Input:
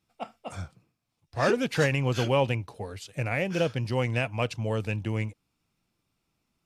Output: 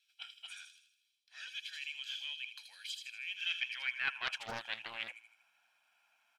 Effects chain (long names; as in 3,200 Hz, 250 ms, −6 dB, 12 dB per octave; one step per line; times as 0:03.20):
flat-topped bell 1,900 Hz +12.5 dB
comb filter 1.3 ms, depth 80%
hum removal 156.4 Hz, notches 2
reversed playback
downward compressor 16 to 1, threshold −31 dBFS, peak gain reduction 21.5 dB
reversed playback
high-pass filter sweep 3,600 Hz → 710 Hz, 0:03.41–0:04.70
on a send: delay with a high-pass on its return 83 ms, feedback 48%, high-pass 3,500 Hz, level −3.5 dB
on the sum: wrong playback speed 24 fps film run at 25 fps
highs frequency-modulated by the lows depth 0.53 ms
level −4.5 dB